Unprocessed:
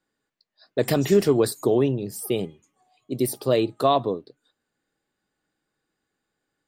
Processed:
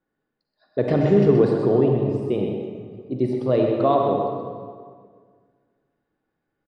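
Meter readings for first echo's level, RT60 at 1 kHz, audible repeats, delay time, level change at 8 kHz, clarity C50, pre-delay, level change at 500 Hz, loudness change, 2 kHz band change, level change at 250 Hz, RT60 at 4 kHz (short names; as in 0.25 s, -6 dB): -6.5 dB, 1.8 s, 1, 0.127 s, under -25 dB, 0.5 dB, 39 ms, +3.0 dB, +2.5 dB, -2.5 dB, +3.5 dB, 1.3 s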